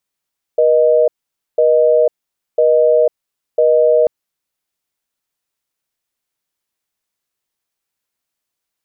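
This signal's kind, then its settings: call progress tone busy tone, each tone -11 dBFS 3.49 s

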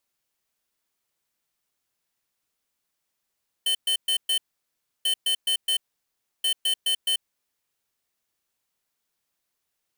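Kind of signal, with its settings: beep pattern square 3060 Hz, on 0.09 s, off 0.12 s, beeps 4, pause 0.67 s, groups 3, -23 dBFS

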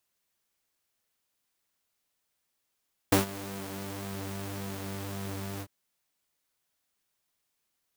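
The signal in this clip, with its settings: synth patch with pulse-width modulation G2, oscillator 2 level -8 dB, noise -8 dB, filter highpass, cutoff 110 Hz, Q 0.94, filter envelope 1 oct, filter decay 1.43 s, attack 4.3 ms, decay 0.13 s, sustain -19 dB, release 0.06 s, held 2.49 s, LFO 1.8 Hz, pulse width 49%, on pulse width 15%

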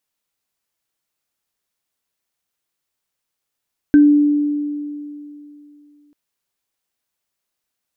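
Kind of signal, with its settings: sine partials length 2.19 s, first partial 293 Hz, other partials 1550 Hz, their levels -17 dB, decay 2.83 s, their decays 0.20 s, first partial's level -5 dB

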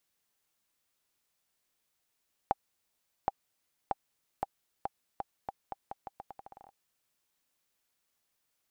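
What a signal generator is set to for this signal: bouncing ball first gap 0.77 s, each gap 0.82, 793 Hz, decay 29 ms -13.5 dBFS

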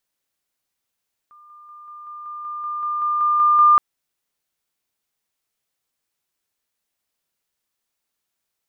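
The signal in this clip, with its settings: level ladder 1200 Hz -45 dBFS, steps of 3 dB, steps 13, 0.19 s 0.00 s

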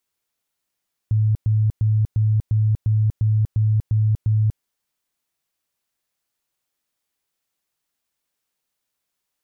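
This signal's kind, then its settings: tone bursts 108 Hz, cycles 26, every 0.35 s, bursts 10, -14.5 dBFS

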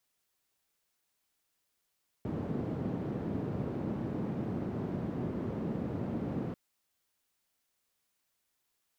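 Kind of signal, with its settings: noise band 130–240 Hz, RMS -35.5 dBFS 4.29 s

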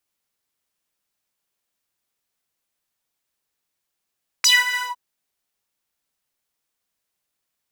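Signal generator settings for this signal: synth patch with pulse-width modulation B5, interval -12 st, detune 29 cents, noise -28.5 dB, filter highpass, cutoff 800 Hz, Q 6.7, filter envelope 3 oct, filter decay 0.12 s, filter sustain 35%, attack 6.1 ms, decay 0.20 s, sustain -13 dB, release 0.16 s, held 0.35 s, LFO 6.3 Hz, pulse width 28%, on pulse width 19%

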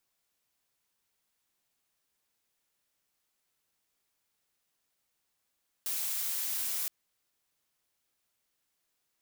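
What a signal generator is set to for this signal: noise blue, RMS -33.5 dBFS 1.02 s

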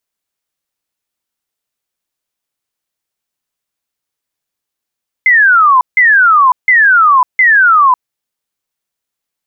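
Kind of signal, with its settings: burst of laser zaps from 2100 Hz, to 980 Hz, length 0.55 s sine, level -4 dB, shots 4, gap 0.16 s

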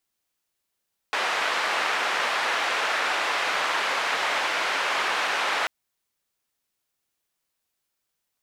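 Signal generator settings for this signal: noise band 670–2000 Hz, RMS -25.5 dBFS 4.54 s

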